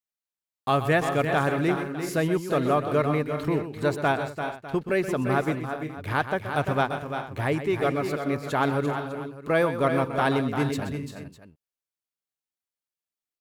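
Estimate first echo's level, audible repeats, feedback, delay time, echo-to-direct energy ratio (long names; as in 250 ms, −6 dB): −11.0 dB, 5, repeats not evenly spaced, 126 ms, −5.0 dB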